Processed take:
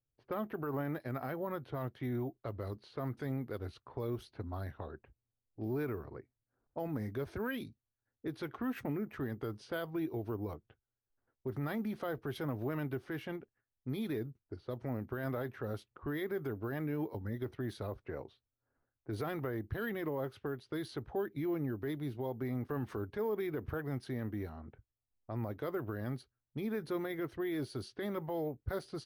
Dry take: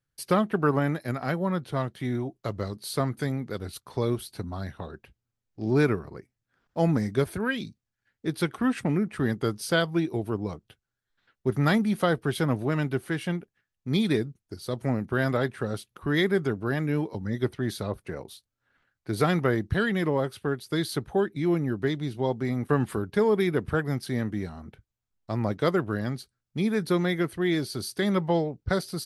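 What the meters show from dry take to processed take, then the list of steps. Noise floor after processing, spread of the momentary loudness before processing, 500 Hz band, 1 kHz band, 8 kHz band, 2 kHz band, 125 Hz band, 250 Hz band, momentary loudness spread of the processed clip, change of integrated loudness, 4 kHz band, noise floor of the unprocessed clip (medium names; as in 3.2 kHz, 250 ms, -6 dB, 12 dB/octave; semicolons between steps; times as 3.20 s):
under -85 dBFS, 11 LU, -11.0 dB, -12.0 dB, under -15 dB, -13.5 dB, -11.5 dB, -11.5 dB, 7 LU, -12.0 dB, -17.0 dB, -85 dBFS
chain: peak limiter -22 dBFS, peak gain reduction 11.5 dB; low-pass 1.7 kHz 6 dB/octave; peaking EQ 180 Hz -14 dB 0.31 oct; careless resampling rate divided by 3×, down none, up hold; level-controlled noise filter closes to 760 Hz, open at -31 dBFS; trim -4.5 dB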